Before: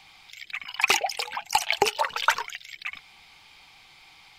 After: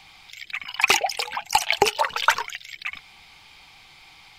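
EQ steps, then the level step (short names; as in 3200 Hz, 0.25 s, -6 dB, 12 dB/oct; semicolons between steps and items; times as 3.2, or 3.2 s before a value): low shelf 160 Hz +4 dB; +3.0 dB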